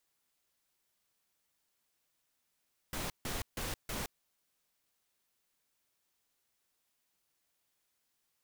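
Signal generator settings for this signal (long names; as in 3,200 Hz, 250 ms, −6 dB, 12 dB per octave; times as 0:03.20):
noise bursts pink, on 0.17 s, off 0.15 s, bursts 4, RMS −38 dBFS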